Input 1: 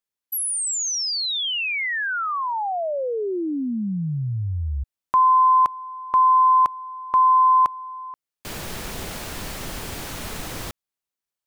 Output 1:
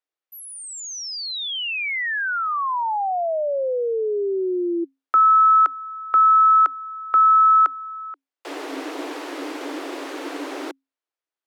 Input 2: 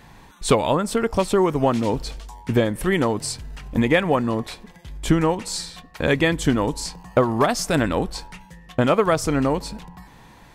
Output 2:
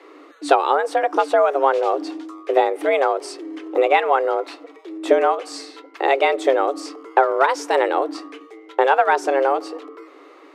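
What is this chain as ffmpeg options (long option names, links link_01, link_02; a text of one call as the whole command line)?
ffmpeg -i in.wav -af "aemphasis=mode=reproduction:type=75fm,afreqshift=270,volume=1.5dB" out.wav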